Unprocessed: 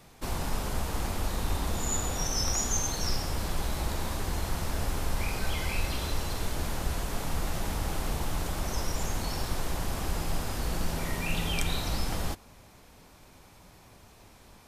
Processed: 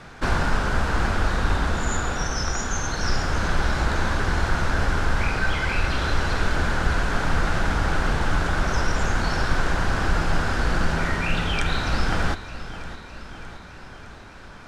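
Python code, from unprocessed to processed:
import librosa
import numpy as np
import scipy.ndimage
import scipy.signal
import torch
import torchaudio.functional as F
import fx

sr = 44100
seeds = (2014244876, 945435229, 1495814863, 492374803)

y = fx.peak_eq(x, sr, hz=1500.0, db=12.0, octaves=0.47)
y = fx.rider(y, sr, range_db=10, speed_s=0.5)
y = fx.air_absorb(y, sr, metres=89.0)
y = fx.echo_feedback(y, sr, ms=612, feedback_pct=59, wet_db=-14.0)
y = fx.doppler_dist(y, sr, depth_ms=0.19)
y = y * 10.0 ** (7.5 / 20.0)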